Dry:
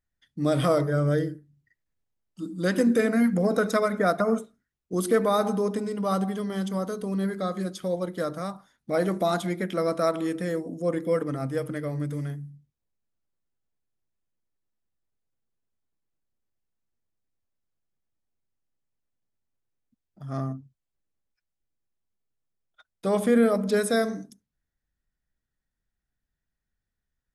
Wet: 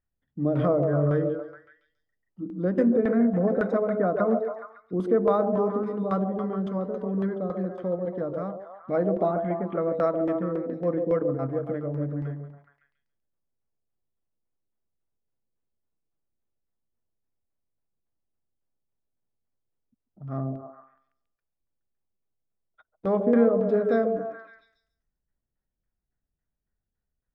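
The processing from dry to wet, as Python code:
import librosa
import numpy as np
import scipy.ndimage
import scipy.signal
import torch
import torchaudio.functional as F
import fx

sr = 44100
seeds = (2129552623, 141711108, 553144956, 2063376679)

y = fx.filter_lfo_lowpass(x, sr, shape='saw_down', hz=3.6, low_hz=460.0, high_hz=1900.0, q=0.73)
y = fx.ellip_lowpass(y, sr, hz=3300.0, order=4, stop_db=40, at=(9.31, 9.95))
y = fx.echo_stepped(y, sr, ms=140, hz=500.0, octaves=0.7, feedback_pct=70, wet_db=-3)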